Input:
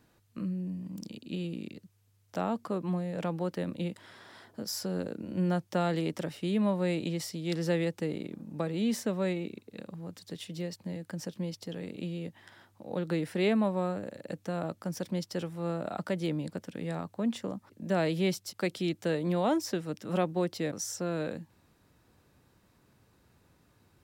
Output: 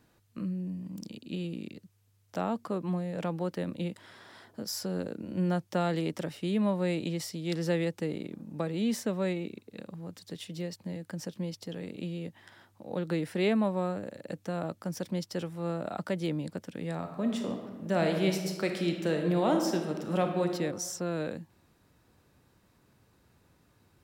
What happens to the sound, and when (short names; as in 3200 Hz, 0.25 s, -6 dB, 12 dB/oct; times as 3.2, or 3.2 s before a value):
16.96–20.53 reverb throw, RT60 1.4 s, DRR 3.5 dB